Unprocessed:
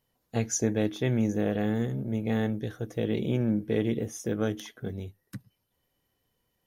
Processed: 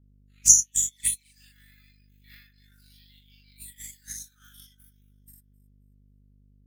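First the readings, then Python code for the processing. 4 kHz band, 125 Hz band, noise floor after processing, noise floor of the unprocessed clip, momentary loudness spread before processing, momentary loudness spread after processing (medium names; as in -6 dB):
+2.0 dB, -21.0 dB, -63 dBFS, -77 dBFS, 11 LU, 23 LU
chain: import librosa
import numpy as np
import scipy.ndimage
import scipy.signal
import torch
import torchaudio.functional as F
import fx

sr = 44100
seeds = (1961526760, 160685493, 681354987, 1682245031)

y = fx.spec_dilate(x, sr, span_ms=120)
y = fx.noise_reduce_blind(y, sr, reduce_db=15)
y = fx.brickwall_highpass(y, sr, low_hz=1200.0)
y = fx.high_shelf(y, sr, hz=4700.0, db=4.5)
y = fx.echo_alternate(y, sr, ms=133, hz=2000.0, feedback_pct=55, wet_db=-14)
y = fx.echo_pitch(y, sr, ms=356, semitones=3, count=2, db_per_echo=-3.0)
y = fx.tilt_eq(y, sr, slope=4.5)
y = fx.env_flanger(y, sr, rest_ms=8.1, full_db=-11.5)
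y = fx.add_hum(y, sr, base_hz=50, snr_db=11)
y = fx.transient(y, sr, attack_db=10, sustain_db=-8)
y = fx.upward_expand(y, sr, threshold_db=-38.0, expansion=1.5)
y = F.gain(torch.from_numpy(y), -8.5).numpy()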